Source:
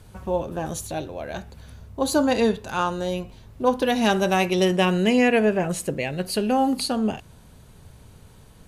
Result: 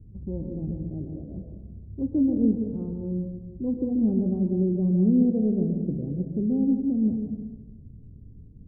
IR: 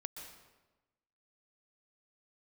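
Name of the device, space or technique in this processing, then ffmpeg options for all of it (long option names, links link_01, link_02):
next room: -filter_complex "[0:a]lowpass=frequency=310:width=0.5412,lowpass=frequency=310:width=1.3066[link_01];[1:a]atrim=start_sample=2205[link_02];[link_01][link_02]afir=irnorm=-1:irlink=0,volume=5dB"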